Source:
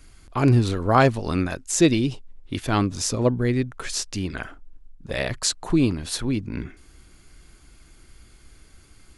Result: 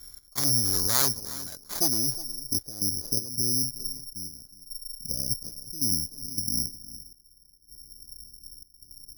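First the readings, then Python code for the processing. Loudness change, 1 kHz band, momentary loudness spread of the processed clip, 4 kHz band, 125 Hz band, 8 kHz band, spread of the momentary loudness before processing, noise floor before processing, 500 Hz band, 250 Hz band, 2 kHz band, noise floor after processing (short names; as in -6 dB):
-3.0 dB, -15.5 dB, 22 LU, +1.5 dB, -14.5 dB, +3.0 dB, 15 LU, -52 dBFS, -17.5 dB, -15.0 dB, under -10 dB, -58 dBFS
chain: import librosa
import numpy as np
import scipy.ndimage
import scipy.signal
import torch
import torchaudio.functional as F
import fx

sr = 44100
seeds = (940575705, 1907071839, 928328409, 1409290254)

p1 = fx.self_delay(x, sr, depth_ms=0.86)
p2 = scipy.signal.sosfilt(scipy.signal.butter(6, 4800.0, 'lowpass', fs=sr, output='sos'), p1)
p3 = fx.over_compress(p2, sr, threshold_db=-26.0, ratio=-0.5)
p4 = p2 + F.gain(torch.from_numpy(p3), 1.5).numpy()
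p5 = fx.step_gate(p4, sr, bpm=80, pattern='x.xxxx...xxxxx.x', floor_db=-12.0, edge_ms=4.5)
p6 = fx.filter_sweep_lowpass(p5, sr, from_hz=1800.0, to_hz=260.0, start_s=1.42, end_s=3.74, q=1.1)
p7 = p6 + fx.echo_single(p6, sr, ms=362, db=-17.0, dry=0)
p8 = (np.kron(scipy.signal.resample_poly(p7, 1, 8), np.eye(8)[0]) * 8)[:len(p7)]
y = F.gain(torch.from_numpy(p8), -16.5).numpy()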